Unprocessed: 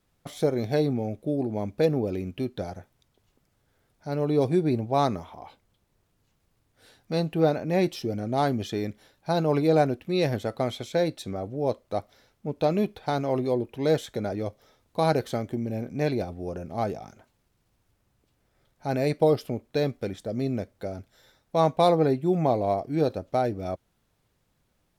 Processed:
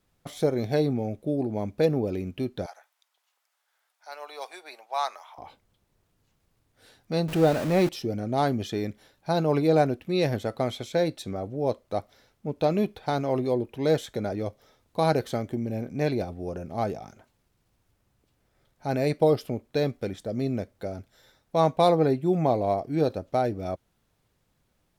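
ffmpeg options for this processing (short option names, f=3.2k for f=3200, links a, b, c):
-filter_complex "[0:a]asettb=1/sr,asplit=3[a][b][c];[a]atrim=end=2.664[d];[b]atrim=start=2.66:end=5.38,asetpts=PTS-STARTPTS,afade=t=in:d=0.004:c=qsin,afade=t=out:st=2.716:d=0.004:c=qsin,highpass=f=800:w=0.5412,highpass=f=800:w=1.3066[e];[c]atrim=start=5.376[f];[d][e]acrossfade=d=0.004:c1=hsin:c2=qsin[g];[g][f]acrossfade=d=0.004:c1=qsin:c2=hsin,asettb=1/sr,asplit=3[h][i][j];[h]atrim=end=7.284[k];[i]atrim=start=7.28:end=7.89,asetpts=PTS-STARTPTS,afade=t=in:d=0.004:c=qsin,afade=t=out:st=0.606:d=0.004:c=qsin,aeval=exprs='val(0)+0.5*0.0355*sgn(val(0))':c=same[l];[j]atrim=start=7.886[m];[k][l]acrossfade=d=0.004:c1=hsin:c2=qsin[n];[n][m]acrossfade=d=0.004:c1=qsin:c2=hsin"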